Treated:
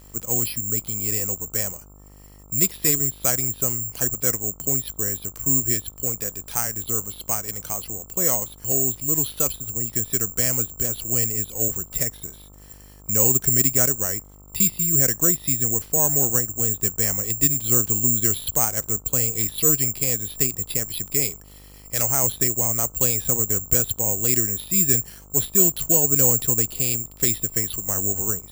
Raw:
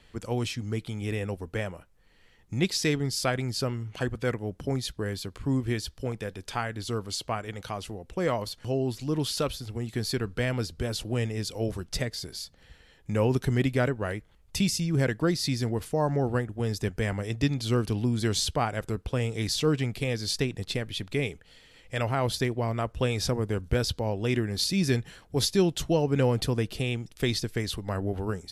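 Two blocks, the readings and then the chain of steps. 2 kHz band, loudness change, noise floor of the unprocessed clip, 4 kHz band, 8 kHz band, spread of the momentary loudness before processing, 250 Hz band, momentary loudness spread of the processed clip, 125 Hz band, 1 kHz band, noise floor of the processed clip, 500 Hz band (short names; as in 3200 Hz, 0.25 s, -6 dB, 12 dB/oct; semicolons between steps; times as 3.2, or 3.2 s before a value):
-1.5 dB, +9.5 dB, -58 dBFS, -3.0 dB, +19.0 dB, 8 LU, -1.5 dB, 8 LU, -1.5 dB, -1.5 dB, -46 dBFS, -1.5 dB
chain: careless resampling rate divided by 6×, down filtered, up zero stuff; short-mantissa float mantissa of 4-bit; buzz 50 Hz, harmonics 27, -46 dBFS -6 dB/oct; gain -1.5 dB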